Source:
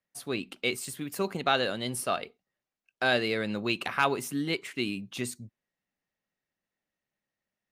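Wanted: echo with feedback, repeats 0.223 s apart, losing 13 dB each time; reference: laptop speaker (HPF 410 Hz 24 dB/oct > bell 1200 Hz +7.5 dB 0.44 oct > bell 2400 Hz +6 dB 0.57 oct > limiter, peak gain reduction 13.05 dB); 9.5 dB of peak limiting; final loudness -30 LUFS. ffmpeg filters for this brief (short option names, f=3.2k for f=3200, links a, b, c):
-af "alimiter=limit=-20.5dB:level=0:latency=1,highpass=f=410:w=0.5412,highpass=f=410:w=1.3066,equalizer=f=1.2k:t=o:w=0.44:g=7.5,equalizer=f=2.4k:t=o:w=0.57:g=6,aecho=1:1:223|446|669:0.224|0.0493|0.0108,volume=8dB,alimiter=limit=-20dB:level=0:latency=1"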